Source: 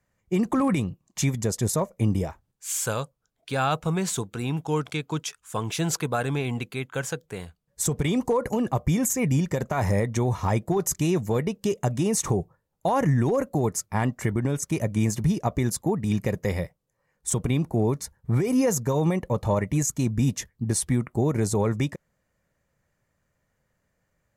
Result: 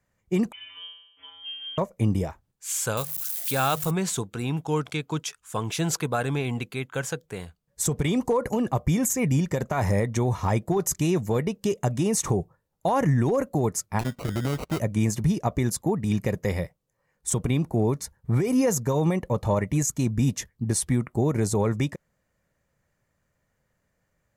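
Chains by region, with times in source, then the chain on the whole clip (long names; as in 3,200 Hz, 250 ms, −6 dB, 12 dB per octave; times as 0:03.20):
0:00.52–0:01.78: variable-slope delta modulation 32 kbit/s + voice inversion scrambler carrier 3,300 Hz + tuned comb filter 91 Hz, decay 0.84 s, harmonics odd, mix 100%
0:02.97–0:03.91: spike at every zero crossing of −29 dBFS + high-shelf EQ 8,200 Hz +12 dB + mains-hum notches 50/100/150/200 Hz
0:13.99–0:14.80: sample-rate reduction 1,700 Hz + saturating transformer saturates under 280 Hz
whole clip: no processing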